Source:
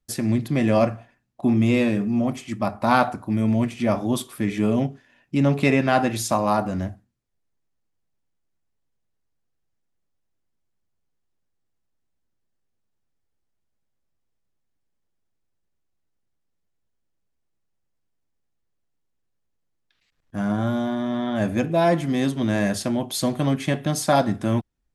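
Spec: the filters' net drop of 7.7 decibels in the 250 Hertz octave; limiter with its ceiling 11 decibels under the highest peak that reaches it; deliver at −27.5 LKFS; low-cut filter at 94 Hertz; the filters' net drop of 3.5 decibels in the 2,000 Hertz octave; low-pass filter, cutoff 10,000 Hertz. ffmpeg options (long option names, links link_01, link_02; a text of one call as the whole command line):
ffmpeg -i in.wav -af "highpass=94,lowpass=10000,equalizer=frequency=250:width_type=o:gain=-9,equalizer=frequency=2000:width_type=o:gain=-4.5,volume=2dB,alimiter=limit=-16dB:level=0:latency=1" out.wav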